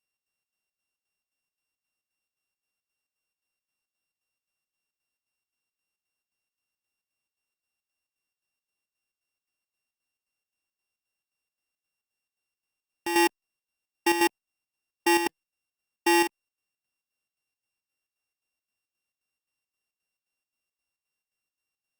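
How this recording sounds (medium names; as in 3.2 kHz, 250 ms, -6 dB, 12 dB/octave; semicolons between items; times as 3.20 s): a buzz of ramps at a fixed pitch in blocks of 16 samples; chopped level 3.8 Hz, depth 60%, duty 65%; Opus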